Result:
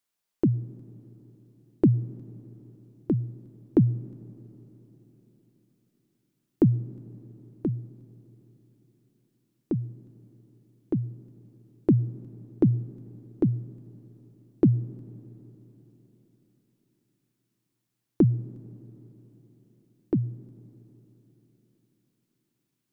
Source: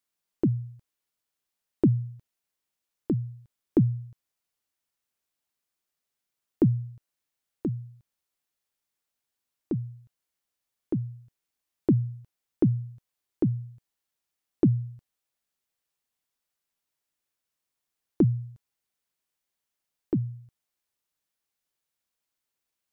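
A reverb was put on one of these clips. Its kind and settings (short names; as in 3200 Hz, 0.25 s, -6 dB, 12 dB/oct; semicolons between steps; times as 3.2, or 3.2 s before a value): digital reverb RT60 4.3 s, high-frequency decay 0.85×, pre-delay 60 ms, DRR 19.5 dB; gain +1.5 dB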